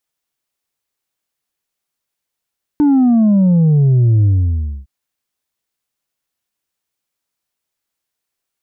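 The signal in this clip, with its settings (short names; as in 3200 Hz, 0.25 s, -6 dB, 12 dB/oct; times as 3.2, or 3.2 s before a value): sub drop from 300 Hz, over 2.06 s, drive 3 dB, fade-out 0.61 s, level -8.5 dB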